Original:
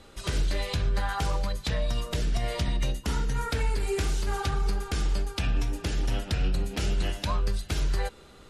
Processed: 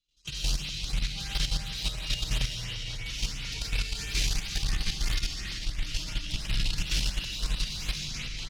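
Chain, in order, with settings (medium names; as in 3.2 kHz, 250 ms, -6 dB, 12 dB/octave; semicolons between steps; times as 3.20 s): 4.15–6.67 s: octave divider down 1 oct, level -1 dB; high-order bell 4.1 kHz +15 dB; trance gate ".x.xxxxxxx." 61 bpm -24 dB; amplifier tone stack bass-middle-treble 6-0-2; comb 6.4 ms, depth 86%; algorithmic reverb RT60 2.6 s, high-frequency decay 0.95×, pre-delay 50 ms, DRR -9.5 dB; saturation -26 dBFS, distortion -11 dB; ever faster or slower copies 301 ms, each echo -4 st, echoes 3, each echo -6 dB; LFO notch saw up 2.9 Hz 570–7800 Hz; level held to a coarse grid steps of 10 dB; trim +5 dB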